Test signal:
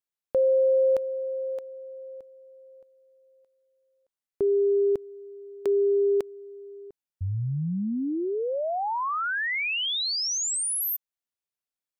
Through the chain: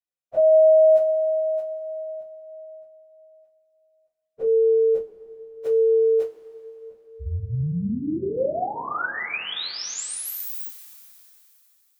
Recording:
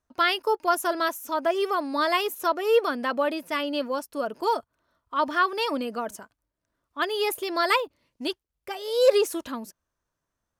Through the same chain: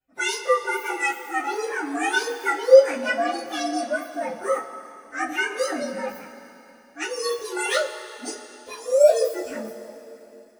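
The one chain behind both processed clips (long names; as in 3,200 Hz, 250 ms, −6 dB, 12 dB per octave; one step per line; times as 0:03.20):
partials spread apart or drawn together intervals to 124%
coupled-rooms reverb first 0.2 s, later 3.2 s, from −21 dB, DRR −9.5 dB
level −6 dB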